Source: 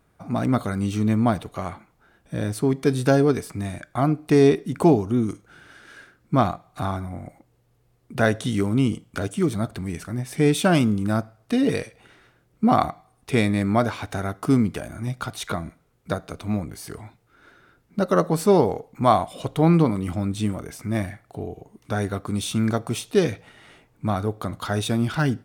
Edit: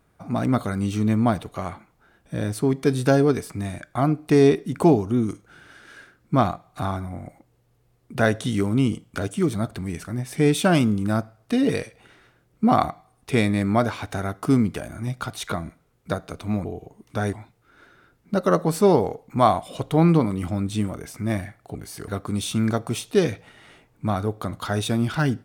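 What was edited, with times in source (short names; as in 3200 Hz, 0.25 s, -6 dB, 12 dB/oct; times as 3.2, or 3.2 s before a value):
16.65–16.98 swap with 21.4–22.08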